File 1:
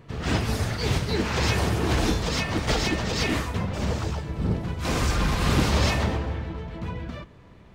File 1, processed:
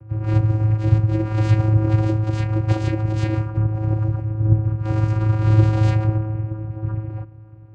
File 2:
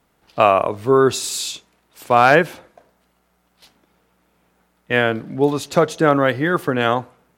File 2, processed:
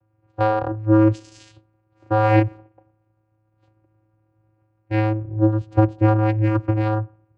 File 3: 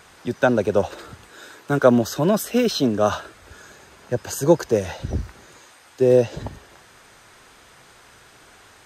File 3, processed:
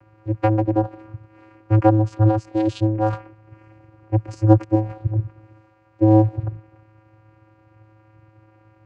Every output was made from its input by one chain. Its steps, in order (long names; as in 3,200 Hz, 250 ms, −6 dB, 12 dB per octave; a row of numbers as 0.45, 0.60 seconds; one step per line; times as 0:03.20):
adaptive Wiener filter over 15 samples
channel vocoder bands 8, square 108 Hz
loudness normalisation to −20 LKFS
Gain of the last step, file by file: +10.0, −0.5, +2.5 decibels